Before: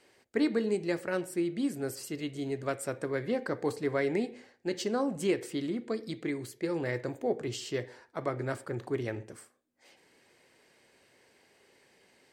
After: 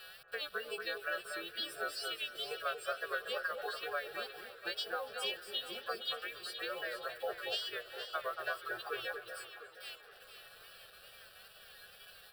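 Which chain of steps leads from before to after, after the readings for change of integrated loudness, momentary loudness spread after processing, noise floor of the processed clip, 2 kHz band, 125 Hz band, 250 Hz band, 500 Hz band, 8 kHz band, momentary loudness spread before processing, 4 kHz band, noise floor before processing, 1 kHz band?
−6.0 dB, 16 LU, −58 dBFS, +2.0 dB, −29.0 dB, −26.0 dB, −10.0 dB, −7.0 dB, 7 LU, +7.0 dB, −67 dBFS, −0.5 dB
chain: every partial snapped to a pitch grid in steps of 2 semitones
low-pass filter 3,700 Hz 12 dB per octave
reverb reduction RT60 1.6 s
high-pass filter 950 Hz 12 dB per octave
downward compressor 8 to 1, threshold −48 dBFS, peak gain reduction 18 dB
bit reduction 11 bits
tape wow and flutter 110 cents
phaser with its sweep stopped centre 1,400 Hz, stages 8
delay that swaps between a low-pass and a high-pass 234 ms, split 1,700 Hz, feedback 61%, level −5 dB
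feedback echo with a swinging delay time 283 ms, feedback 80%, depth 101 cents, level −21 dB
level +14.5 dB

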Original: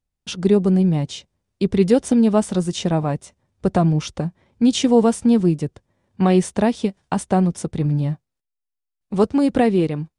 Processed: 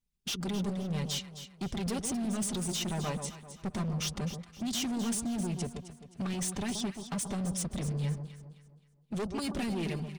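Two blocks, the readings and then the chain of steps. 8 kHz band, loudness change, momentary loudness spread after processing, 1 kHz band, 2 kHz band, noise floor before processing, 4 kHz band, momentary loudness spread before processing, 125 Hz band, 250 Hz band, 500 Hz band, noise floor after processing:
−2.5 dB, −15.0 dB, 8 LU, −16.0 dB, −9.5 dB, −82 dBFS, −6.0 dB, 12 LU, −13.5 dB, −16.0 dB, −20.5 dB, −65 dBFS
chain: parametric band 1,500 Hz −6.5 dB 0.53 octaves
harmonic and percussive parts rebalanced harmonic −13 dB
parametric band 610 Hz −12 dB 1.3 octaves
comb filter 5 ms, depth 82%
in parallel at +1 dB: compressor whose output falls as the input rises −31 dBFS, ratio −1
on the sum: gain into a clipping stage and back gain 23 dB
on a send: delay that swaps between a low-pass and a high-pass 131 ms, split 1,100 Hz, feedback 60%, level −7 dB
on the sum: level −8 dB

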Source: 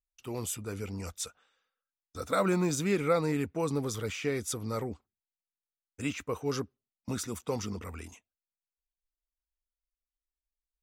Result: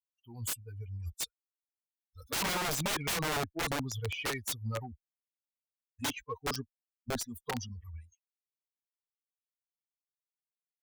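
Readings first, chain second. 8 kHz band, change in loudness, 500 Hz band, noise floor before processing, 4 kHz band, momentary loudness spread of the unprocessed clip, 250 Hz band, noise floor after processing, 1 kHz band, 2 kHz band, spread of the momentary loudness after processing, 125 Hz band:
+0.5 dB, −2.5 dB, −9.0 dB, below −85 dBFS, +5.5 dB, 16 LU, −8.5 dB, below −85 dBFS, −0.5 dB, +2.5 dB, 15 LU, −3.5 dB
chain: spectral dynamics exaggerated over time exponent 3
wrap-around overflow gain 34 dB
harmonic generator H 8 −40 dB, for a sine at −34 dBFS
level +7 dB

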